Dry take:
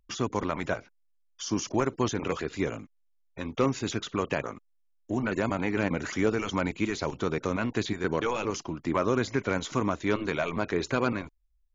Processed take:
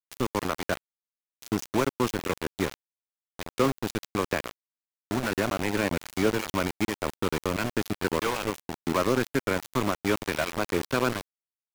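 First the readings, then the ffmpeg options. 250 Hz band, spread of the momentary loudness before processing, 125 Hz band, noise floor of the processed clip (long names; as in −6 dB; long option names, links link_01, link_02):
0.0 dB, 7 LU, −0.5 dB, below −85 dBFS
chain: -filter_complex "[0:a]acrossover=split=230[link_01][link_02];[link_01]acompressor=threshold=-30dB:ratio=6[link_03];[link_03][link_02]amix=inputs=2:normalize=0,aeval=exprs='val(0)*gte(abs(val(0)),0.0447)':channel_layout=same,volume=2dB"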